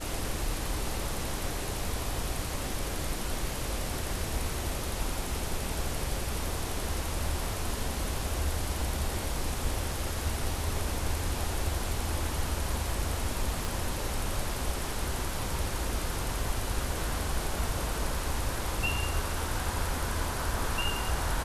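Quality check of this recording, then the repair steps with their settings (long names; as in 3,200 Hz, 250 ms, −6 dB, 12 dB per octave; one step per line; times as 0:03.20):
0:13.65: click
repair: click removal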